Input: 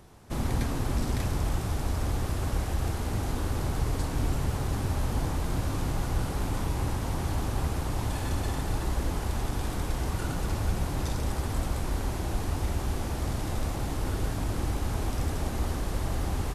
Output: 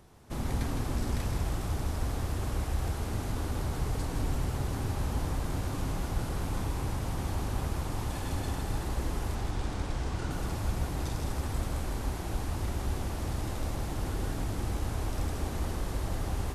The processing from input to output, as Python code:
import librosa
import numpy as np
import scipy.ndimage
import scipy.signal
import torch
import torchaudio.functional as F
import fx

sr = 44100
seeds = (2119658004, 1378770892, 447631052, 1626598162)

y = fx.lowpass(x, sr, hz=7400.0, slope=12, at=(9.35, 10.31))
y = y + 10.0 ** (-6.0 / 20.0) * np.pad(y, (int(160 * sr / 1000.0), 0))[:len(y)]
y = y * 10.0 ** (-4.0 / 20.0)